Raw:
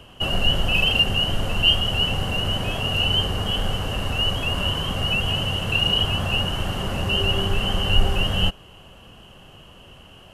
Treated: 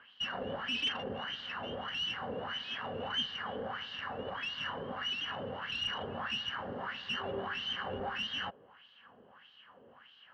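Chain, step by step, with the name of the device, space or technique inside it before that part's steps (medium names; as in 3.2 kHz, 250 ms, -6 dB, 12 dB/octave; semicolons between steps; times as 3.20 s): bass shelf 66 Hz +7 dB; wah-wah guitar rig (wah-wah 1.6 Hz 460–3900 Hz, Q 3.3; valve stage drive 24 dB, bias 0.3; cabinet simulation 81–4400 Hz, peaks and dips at 240 Hz +8 dB, 350 Hz -6 dB, 650 Hz -7 dB, 1.7 kHz +7 dB, 2.7 kHz -9 dB); trim +1.5 dB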